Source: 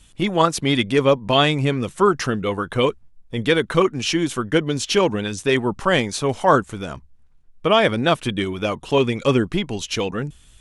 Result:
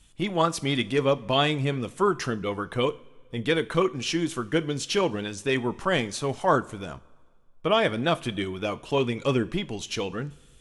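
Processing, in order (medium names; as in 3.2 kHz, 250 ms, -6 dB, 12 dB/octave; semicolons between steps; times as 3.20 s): two-slope reverb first 0.34 s, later 1.7 s, from -17 dB, DRR 13 dB; trim -6.5 dB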